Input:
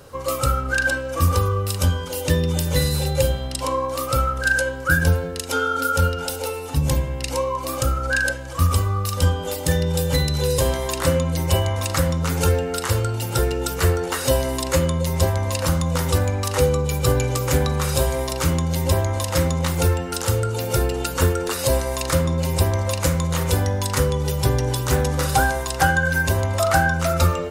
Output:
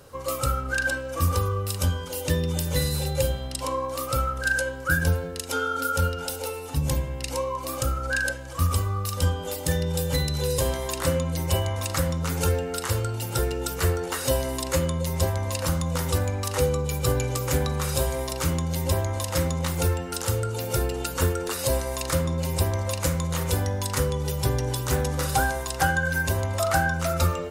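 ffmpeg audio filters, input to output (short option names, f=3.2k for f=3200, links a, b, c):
-af "equalizer=f=14k:w=0.37:g=2.5,volume=-5dB"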